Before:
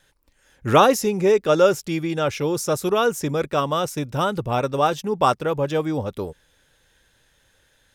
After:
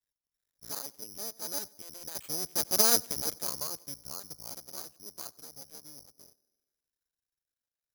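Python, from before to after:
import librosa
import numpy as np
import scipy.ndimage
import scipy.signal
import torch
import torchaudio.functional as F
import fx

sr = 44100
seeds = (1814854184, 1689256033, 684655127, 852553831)

y = fx.cycle_switch(x, sr, every=2, mode='muted')
y = fx.doppler_pass(y, sr, speed_mps=16, closest_m=2.6, pass_at_s=2.87)
y = fx.echo_tape(y, sr, ms=92, feedback_pct=72, wet_db=-21.5, lp_hz=1300.0, drive_db=16.0, wow_cents=28)
y = (np.kron(scipy.signal.resample_poly(y, 1, 8), np.eye(8)[0]) * 8)[:len(y)]
y = F.gain(torch.from_numpy(y), -8.0).numpy()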